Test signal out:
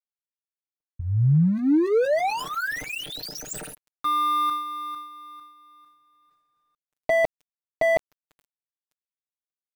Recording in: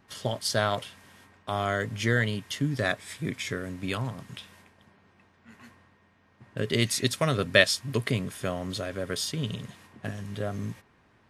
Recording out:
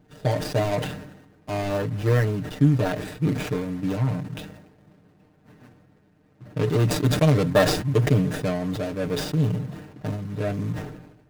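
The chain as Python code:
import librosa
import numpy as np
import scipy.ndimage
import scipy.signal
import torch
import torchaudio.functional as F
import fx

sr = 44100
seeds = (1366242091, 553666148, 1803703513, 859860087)

y = scipy.signal.medfilt(x, 41)
y = y + 0.88 * np.pad(y, (int(6.6 * sr / 1000.0), 0))[:len(y)]
y = fx.sustainer(y, sr, db_per_s=60.0)
y = y * librosa.db_to_amplitude(5.0)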